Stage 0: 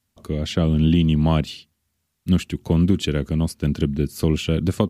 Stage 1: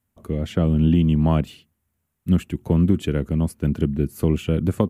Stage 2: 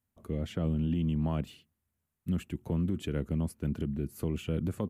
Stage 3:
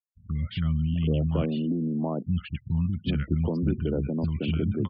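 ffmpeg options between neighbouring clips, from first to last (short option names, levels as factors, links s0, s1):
-af "equalizer=f=4600:t=o:w=1.4:g=-14"
-af "alimiter=limit=0.211:level=0:latency=1:release=33,volume=0.376"
-filter_complex "[0:a]acrossover=split=190|1100[s0][s1][s2];[s2]adelay=50[s3];[s1]adelay=780[s4];[s0][s4][s3]amix=inputs=3:normalize=0,afftfilt=real='re*gte(hypot(re,im),0.00316)':imag='im*gte(hypot(re,im),0.00316)':win_size=1024:overlap=0.75,aresample=11025,aresample=44100,volume=2.51"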